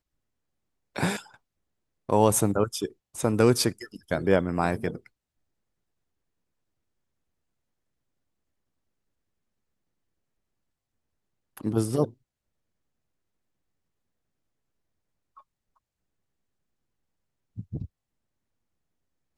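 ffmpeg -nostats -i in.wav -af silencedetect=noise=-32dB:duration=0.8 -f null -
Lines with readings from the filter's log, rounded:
silence_start: 0.00
silence_end: 0.96 | silence_duration: 0.96
silence_start: 1.19
silence_end: 2.09 | silence_duration: 0.90
silence_start: 4.96
silence_end: 11.57 | silence_duration: 6.61
silence_start: 12.06
silence_end: 17.59 | silence_duration: 5.53
silence_start: 17.85
silence_end: 19.37 | silence_duration: 1.53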